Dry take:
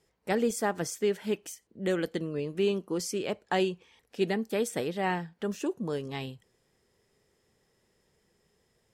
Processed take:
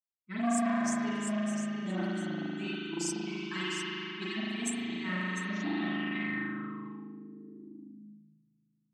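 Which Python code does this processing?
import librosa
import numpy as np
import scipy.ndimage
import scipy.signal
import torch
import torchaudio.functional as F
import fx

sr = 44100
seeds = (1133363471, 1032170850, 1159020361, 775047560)

y = fx.bin_expand(x, sr, power=2.0)
y = y + 10.0 ** (-8.5 / 20.0) * np.pad(y, (int(703 * sr / 1000.0), 0))[:len(y)]
y = fx.rev_spring(y, sr, rt60_s=3.9, pass_ms=(38,), chirp_ms=35, drr_db=-9.5)
y = fx.filter_sweep_lowpass(y, sr, from_hz=7900.0, to_hz=130.0, start_s=5.27, end_s=8.46, q=4.5)
y = scipy.signal.sosfilt(scipy.signal.butter(4, 98.0, 'highpass', fs=sr, output='sos'), y)
y = fx.env_lowpass(y, sr, base_hz=890.0, full_db=-22.0)
y = scipy.signal.sosfilt(scipy.signal.ellip(3, 1.0, 40, [370.0, 1000.0], 'bandstop', fs=sr, output='sos'), y)
y = y + 0.74 * np.pad(y, (int(3.9 * sr / 1000.0), 0))[:len(y)]
y = fx.transformer_sat(y, sr, knee_hz=1100.0)
y = y * 10.0 ** (-5.0 / 20.0)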